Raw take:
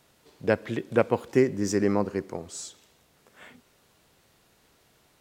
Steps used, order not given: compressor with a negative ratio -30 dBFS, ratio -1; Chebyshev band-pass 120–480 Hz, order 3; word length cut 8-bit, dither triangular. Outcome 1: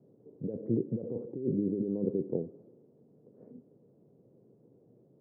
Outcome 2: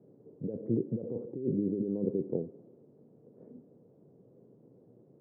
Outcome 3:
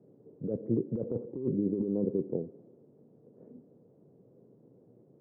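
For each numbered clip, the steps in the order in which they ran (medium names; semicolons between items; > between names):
compressor with a negative ratio > word length cut > Chebyshev band-pass; word length cut > compressor with a negative ratio > Chebyshev band-pass; word length cut > Chebyshev band-pass > compressor with a negative ratio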